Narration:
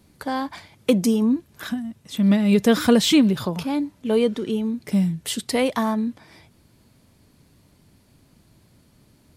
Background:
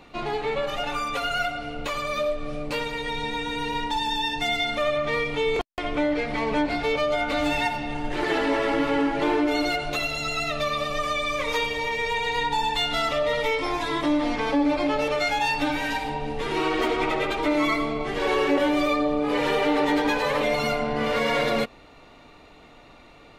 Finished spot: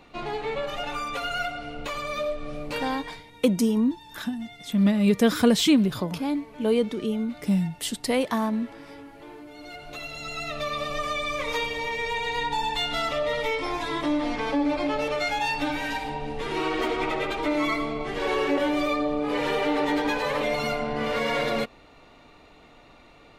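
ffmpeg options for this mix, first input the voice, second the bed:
ffmpeg -i stem1.wav -i stem2.wav -filter_complex "[0:a]adelay=2550,volume=-3dB[link_01];[1:a]volume=16dB,afade=type=out:start_time=2.8:duration=0.44:silence=0.11885,afade=type=in:start_time=9.56:duration=1.33:silence=0.112202[link_02];[link_01][link_02]amix=inputs=2:normalize=0" out.wav

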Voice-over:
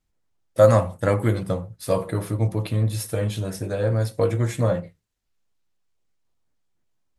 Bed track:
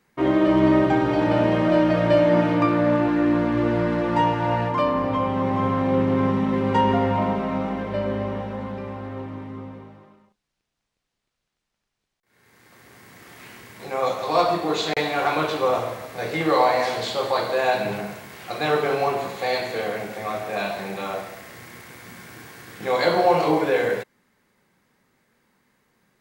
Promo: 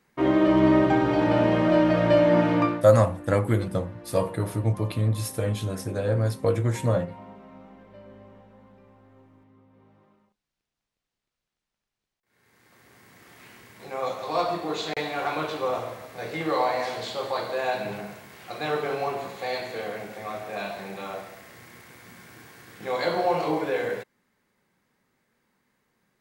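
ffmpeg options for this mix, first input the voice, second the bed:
ffmpeg -i stem1.wav -i stem2.wav -filter_complex "[0:a]adelay=2250,volume=-2dB[link_01];[1:a]volume=14.5dB,afade=type=out:start_time=2.6:duration=0.24:silence=0.0944061,afade=type=in:start_time=9.69:duration=0.71:silence=0.158489[link_02];[link_01][link_02]amix=inputs=2:normalize=0" out.wav

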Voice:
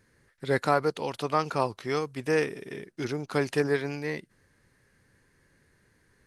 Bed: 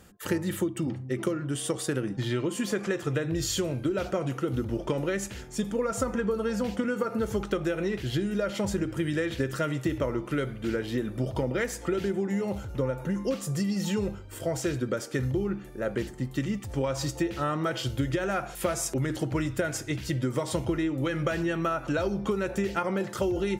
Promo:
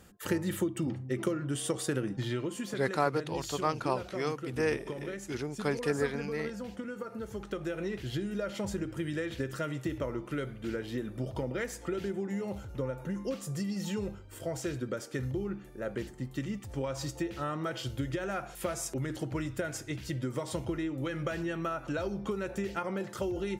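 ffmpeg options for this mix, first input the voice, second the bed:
ffmpeg -i stem1.wav -i stem2.wav -filter_complex "[0:a]adelay=2300,volume=-4.5dB[link_01];[1:a]volume=2.5dB,afade=type=out:start_time=2.03:duration=0.84:silence=0.375837,afade=type=in:start_time=7.33:duration=0.46:silence=0.562341[link_02];[link_01][link_02]amix=inputs=2:normalize=0" out.wav

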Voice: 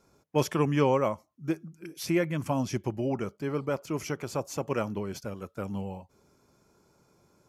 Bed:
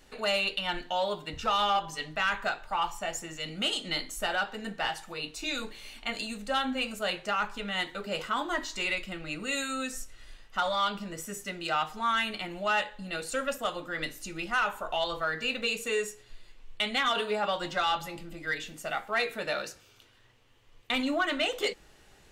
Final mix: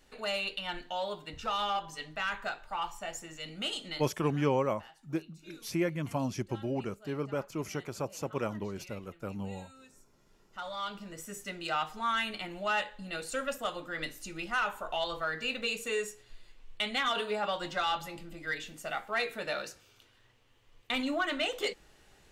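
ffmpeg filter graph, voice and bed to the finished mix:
ffmpeg -i stem1.wav -i stem2.wav -filter_complex "[0:a]adelay=3650,volume=-4dB[link_01];[1:a]volume=14.5dB,afade=type=out:start_time=3.86:duration=0.26:silence=0.133352,afade=type=in:start_time=10.26:duration=1.25:silence=0.1[link_02];[link_01][link_02]amix=inputs=2:normalize=0" out.wav

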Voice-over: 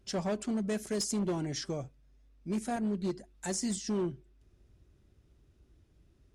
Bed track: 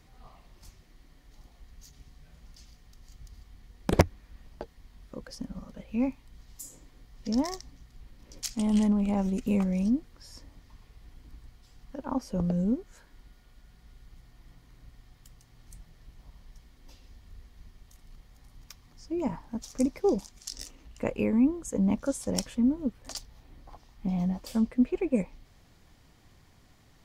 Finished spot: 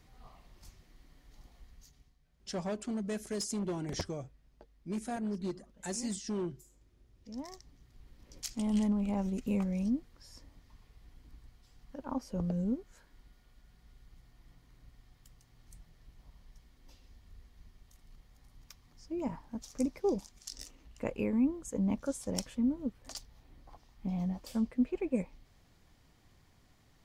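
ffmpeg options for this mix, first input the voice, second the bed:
ffmpeg -i stem1.wav -i stem2.wav -filter_complex "[0:a]adelay=2400,volume=-3.5dB[link_01];[1:a]volume=9.5dB,afade=type=out:start_time=1.59:duration=0.58:silence=0.177828,afade=type=in:start_time=7.28:duration=0.9:silence=0.237137[link_02];[link_01][link_02]amix=inputs=2:normalize=0" out.wav

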